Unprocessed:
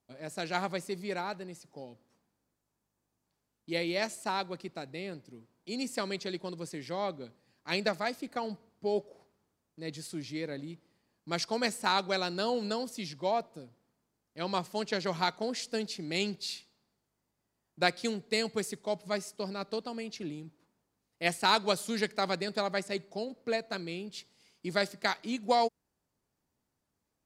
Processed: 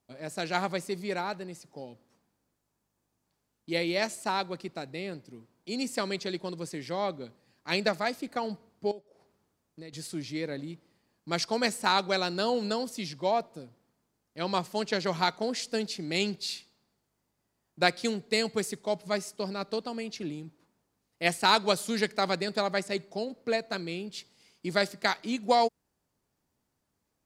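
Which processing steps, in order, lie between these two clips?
0:08.91–0:09.93: downward compressor 10 to 1, threshold −45 dBFS, peak gain reduction 19 dB
level +3 dB

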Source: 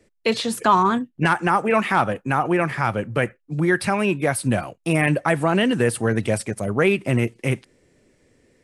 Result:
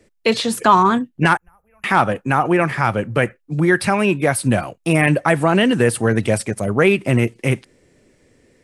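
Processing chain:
0:01.37–0:01.84: inverse Chebyshev band-stop filter 120–9,200 Hz, stop band 40 dB
level +4 dB

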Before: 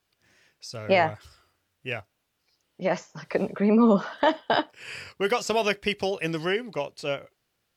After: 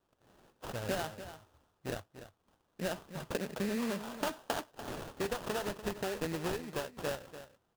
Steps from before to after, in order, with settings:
downward compressor 6 to 1, threshold −31 dBFS, peak gain reduction 15 dB
sample-rate reduction 2,200 Hz, jitter 20%
on a send: single-tap delay 292 ms −12.5 dB
on the sum: level −2 dB

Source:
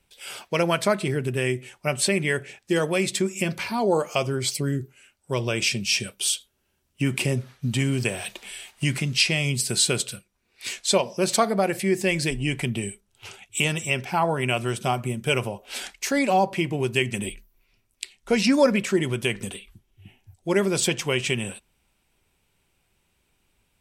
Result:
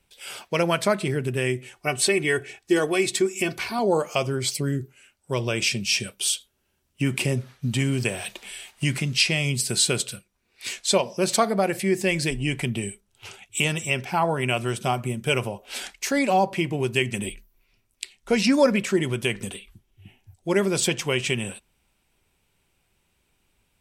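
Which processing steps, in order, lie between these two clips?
0:01.76–0:03.79: comb filter 2.7 ms, depth 59%

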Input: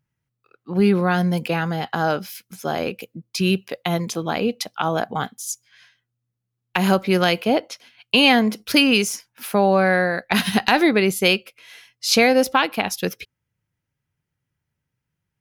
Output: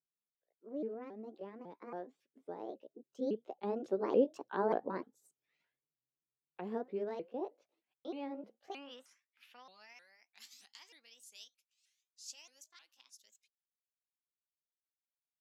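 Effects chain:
pitch shifter swept by a sawtooth +6.5 semitones, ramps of 293 ms
source passing by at 0:04.49, 21 m/s, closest 11 metres
band-pass filter sweep 420 Hz → 7,000 Hz, 0:08.31–0:10.07

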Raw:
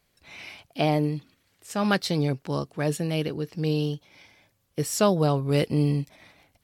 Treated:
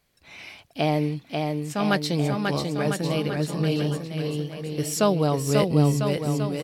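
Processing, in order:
bouncing-ball delay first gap 540 ms, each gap 0.85×, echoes 5

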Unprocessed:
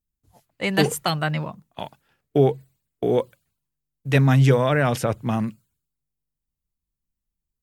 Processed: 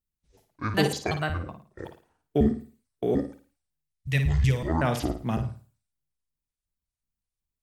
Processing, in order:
pitch shifter gated in a rhythm −10.5 semitones, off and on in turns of 185 ms
gain on a spectral selection 0:03.83–0:04.67, 220–1,700 Hz −11 dB
flutter between parallel walls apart 9.4 metres, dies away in 0.38 s
level −4.5 dB

